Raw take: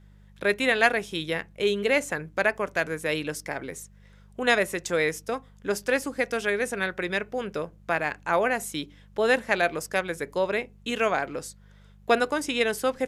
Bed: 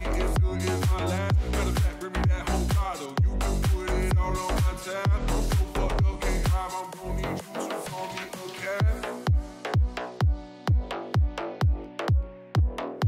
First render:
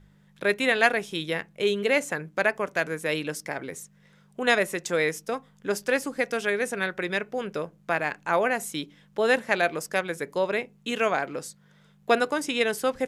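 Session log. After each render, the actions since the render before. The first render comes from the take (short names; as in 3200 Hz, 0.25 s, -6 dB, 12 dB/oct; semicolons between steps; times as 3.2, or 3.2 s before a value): de-hum 50 Hz, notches 2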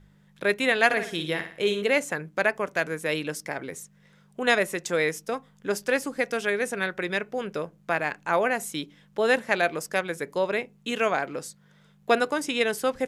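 0.85–1.82 flutter echo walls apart 9.9 m, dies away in 0.45 s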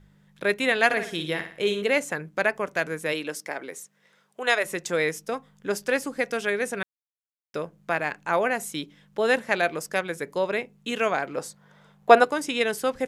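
3.12–4.64 HPF 230 Hz -> 510 Hz; 6.83–7.54 mute; 11.37–12.24 bell 820 Hz +10.5 dB 1.7 oct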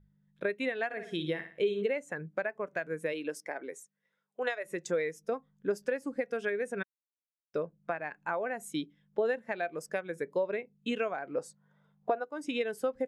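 compressor 20:1, threshold -28 dBFS, peak gain reduction 21 dB; spectral expander 1.5:1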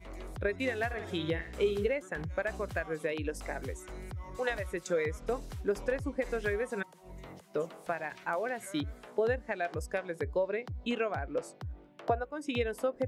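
add bed -18 dB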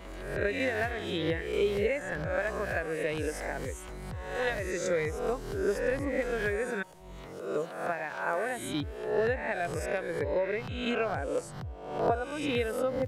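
spectral swells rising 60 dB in 0.80 s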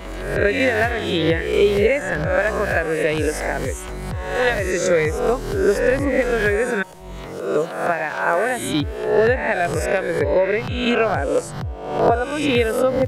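gain +12 dB; limiter -3 dBFS, peak gain reduction 2.5 dB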